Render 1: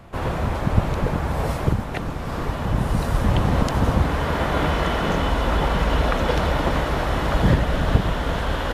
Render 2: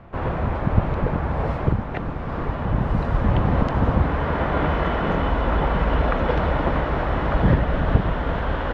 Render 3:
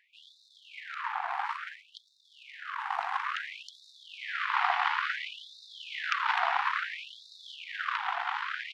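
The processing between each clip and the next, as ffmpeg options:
-af "lowpass=2200"
-af "aeval=exprs='0.708*(cos(1*acos(clip(val(0)/0.708,-1,1)))-cos(1*PI/2))+0.316*(cos(6*acos(clip(val(0)/0.708,-1,1)))-cos(6*PI/2))':c=same,afftfilt=real='re*gte(b*sr/1024,680*pow(3600/680,0.5+0.5*sin(2*PI*0.58*pts/sr)))':imag='im*gte(b*sr/1024,680*pow(3600/680,0.5+0.5*sin(2*PI*0.58*pts/sr)))':win_size=1024:overlap=0.75,volume=0.531"

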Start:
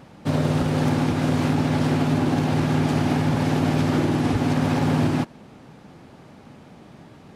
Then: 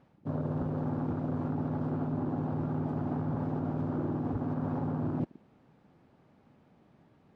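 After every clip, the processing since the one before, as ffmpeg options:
-af "afwtdn=0.0501,areverse,acompressor=threshold=0.0316:ratio=6,areverse,lowpass=f=2300:p=1"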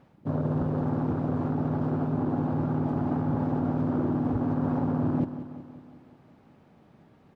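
-af "aecho=1:1:184|368|552|736|920|1104|1288:0.237|0.14|0.0825|0.0487|0.0287|0.017|0.01,volume=1.78"

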